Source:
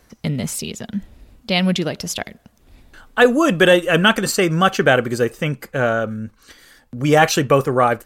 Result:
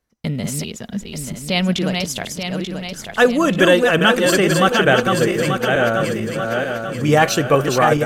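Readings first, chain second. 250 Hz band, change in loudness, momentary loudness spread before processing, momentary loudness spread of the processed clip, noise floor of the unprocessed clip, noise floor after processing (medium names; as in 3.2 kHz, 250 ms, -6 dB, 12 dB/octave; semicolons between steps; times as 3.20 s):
+1.0 dB, 0.0 dB, 14 LU, 13 LU, -55 dBFS, -35 dBFS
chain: backward echo that repeats 443 ms, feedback 67%, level -4 dB; gate with hold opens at -24 dBFS; trim -1 dB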